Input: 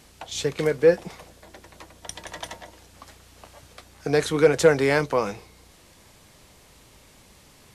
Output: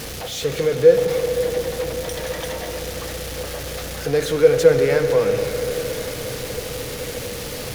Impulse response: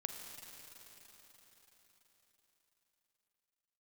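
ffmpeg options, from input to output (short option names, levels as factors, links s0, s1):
-filter_complex "[0:a]aeval=exprs='val(0)+0.5*0.0794*sgn(val(0))':c=same,asplit=2[s0][s1];[s1]equalizer=f=125:t=o:w=0.33:g=9,equalizer=f=500:t=o:w=0.33:g=12,equalizer=f=1000:t=o:w=0.33:g=-10,equalizer=f=8000:t=o:w=0.33:g=-7[s2];[1:a]atrim=start_sample=2205,asetrate=28665,aresample=44100[s3];[s2][s3]afir=irnorm=-1:irlink=0,volume=1.68[s4];[s0][s4]amix=inputs=2:normalize=0,volume=0.237"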